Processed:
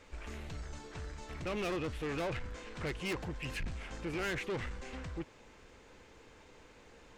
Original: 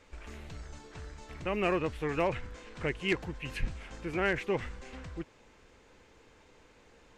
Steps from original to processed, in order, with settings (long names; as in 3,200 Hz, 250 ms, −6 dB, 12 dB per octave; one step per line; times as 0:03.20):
soft clipping −35 dBFS, distortion −5 dB
level +2 dB